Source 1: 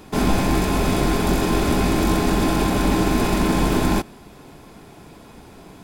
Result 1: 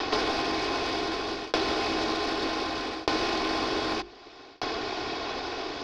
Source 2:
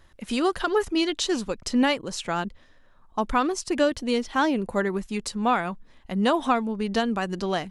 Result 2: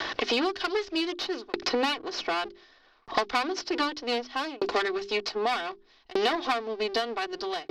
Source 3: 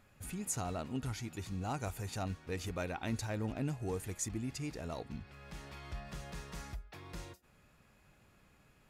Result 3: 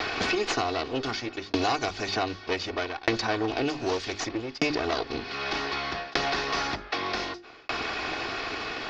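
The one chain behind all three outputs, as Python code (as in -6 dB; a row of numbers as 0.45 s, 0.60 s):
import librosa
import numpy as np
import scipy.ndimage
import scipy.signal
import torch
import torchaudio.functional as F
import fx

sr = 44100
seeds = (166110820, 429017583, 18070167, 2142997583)

p1 = fx.lower_of_two(x, sr, delay_ms=2.7)
p2 = scipy.signal.sosfilt(scipy.signal.butter(8, 5200.0, 'lowpass', fs=sr, output='sos'), p1)
p3 = fx.low_shelf(p2, sr, hz=120.0, db=-8.0)
p4 = fx.hum_notches(p3, sr, base_hz=50, count=8)
p5 = 10.0 ** (-25.5 / 20.0) * np.tanh(p4 / 10.0 ** (-25.5 / 20.0))
p6 = p4 + (p5 * 10.0 ** (-9.5 / 20.0))
p7 = fx.tremolo_shape(p6, sr, shape='saw_down', hz=0.65, depth_pct=100)
p8 = fx.bass_treble(p7, sr, bass_db=-9, treble_db=11)
p9 = fx.band_squash(p8, sr, depth_pct=100)
y = p9 * 10.0 ** (-30 / 20.0) / np.sqrt(np.mean(np.square(p9)))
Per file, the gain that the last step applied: -2.5 dB, +0.5 dB, +17.0 dB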